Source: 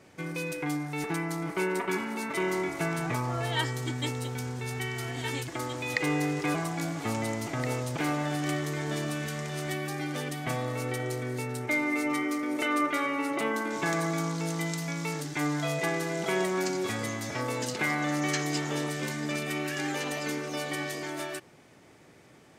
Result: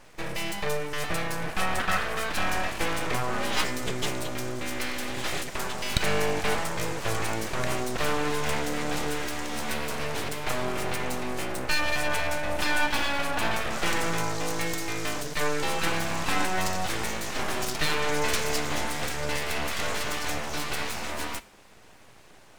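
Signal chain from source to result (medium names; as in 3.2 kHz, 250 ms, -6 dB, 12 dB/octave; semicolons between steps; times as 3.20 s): full-wave rectifier; 1.78–2.30 s: peaking EQ 1.4 kHz +6 dB 0.82 oct; reverberation, pre-delay 3 ms, DRR 15.5 dB; trim +5.5 dB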